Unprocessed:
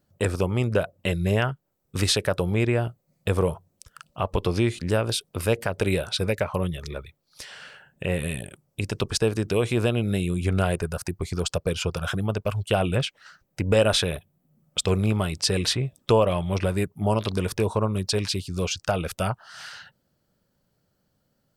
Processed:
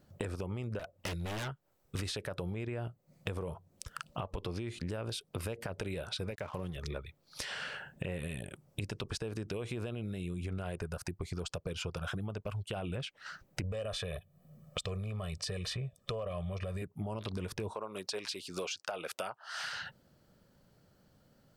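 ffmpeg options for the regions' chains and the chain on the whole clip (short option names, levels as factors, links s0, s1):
-filter_complex "[0:a]asettb=1/sr,asplit=3[s0][s1][s2];[s0]atrim=end=0.794[s3];[s1]atrim=start=0.79:end=1.99,asetpts=PTS-STARTPTS,afade=t=in:d=0.004:c=qsin,afade=t=out:st=1.196:d=0.004:c=qsin,equalizer=f=190:w=0.56:g=-7,aeval=exprs='0.0501*(abs(mod(val(0)/0.0501+3,4)-2)-1)':c=same[s4];[s2]atrim=start=1.986[s5];[s3][s4]acrossfade=d=0.004:c1=hsin:c2=qsin[s6];[s6][s5]acrossfade=d=0.004:c1=qsin:c2=hsin,asettb=1/sr,asplit=3[s7][s8][s9];[s7]atrim=end=6.314[s10];[s8]atrim=start=6.31:end=6.76,asetpts=PTS-STARTPTS,afade=t=in:d=0.004:c=qsin,afade=t=out:st=0.446:d=0.004:c=qsin,highpass=64,aeval=exprs='sgn(val(0))*max(abs(val(0))-0.00668,0)':c=same[s11];[s9]atrim=start=6.756[s12];[s10][s11]acrossfade=d=0.004:c1=hsin:c2=qsin[s13];[s13][s12]acrossfade=d=0.004:c1=qsin:c2=hsin,asettb=1/sr,asplit=3[s14][s15][s16];[s14]atrim=end=13.634[s17];[s15]atrim=start=13.63:end=16.82,asetpts=PTS-STARTPTS,afade=t=in:d=0.004:c=qsin,afade=t=out:st=3.186:d=0.004:c=qsin,aecho=1:1:1.7:0.86,atrim=end_sample=140679,asoftclip=type=hard:threshold=0.447[s18];[s16]atrim=start=16.816[s19];[s17][s18]acrossfade=d=0.004:c1=hsin:c2=qsin[s20];[s20][s19]acrossfade=d=0.004:c1=qsin:c2=hsin,asettb=1/sr,asplit=3[s21][s22][s23];[s21]atrim=end=17.744[s24];[s22]atrim=start=17.74:end=19.64,asetpts=PTS-STARTPTS,afade=t=in:d=0.004:c=qsin,afade=t=out:st=1.896:d=0.004:c=qsin,highpass=450,agate=range=0.0224:threshold=0.00316:ratio=3:release=100:detection=peak[s25];[s23]atrim=start=19.636[s26];[s24][s25]acrossfade=d=0.004:c1=hsin:c2=qsin[s27];[s27][s26]acrossfade=d=0.004:c1=qsin:c2=hsin,highshelf=f=6000:g=-6,alimiter=limit=0.112:level=0:latency=1:release=58,acompressor=threshold=0.00794:ratio=8,volume=2"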